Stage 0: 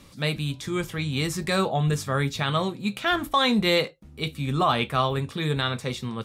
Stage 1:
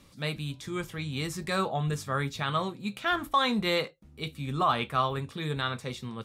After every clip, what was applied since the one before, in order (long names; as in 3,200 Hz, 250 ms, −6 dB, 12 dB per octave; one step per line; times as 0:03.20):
dynamic equaliser 1,200 Hz, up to +5 dB, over −35 dBFS, Q 1.4
level −6.5 dB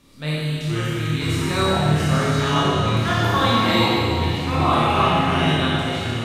flutter between parallel walls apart 4.5 metres, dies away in 0.28 s
four-comb reverb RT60 2.4 s, combs from 26 ms, DRR −6 dB
delay with pitch and tempo change per echo 403 ms, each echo −5 semitones, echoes 2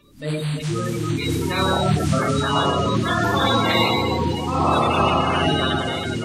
spectral magnitudes quantised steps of 30 dB
reversed playback
upward compression, threshold −35 dBFS
reversed playback